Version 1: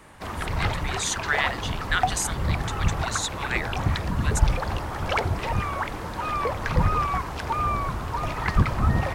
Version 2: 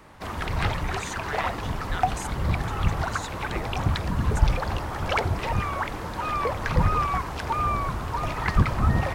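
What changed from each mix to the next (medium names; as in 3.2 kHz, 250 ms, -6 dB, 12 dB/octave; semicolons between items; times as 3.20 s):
speech -11.5 dB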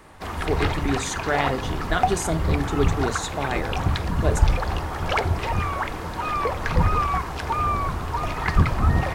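speech: remove ladder high-pass 1.3 kHz, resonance 25%; reverb: on, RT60 0.40 s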